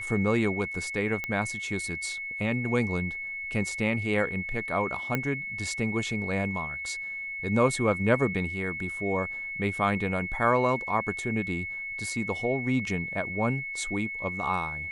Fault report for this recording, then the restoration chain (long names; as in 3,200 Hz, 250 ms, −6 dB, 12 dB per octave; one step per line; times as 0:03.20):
whistle 2,200 Hz −33 dBFS
0:01.24: click −17 dBFS
0:05.15: click −14 dBFS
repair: click removal
notch filter 2,200 Hz, Q 30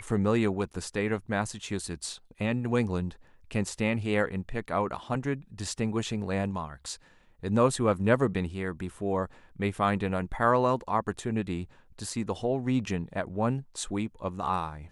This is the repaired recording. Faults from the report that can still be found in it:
none of them is left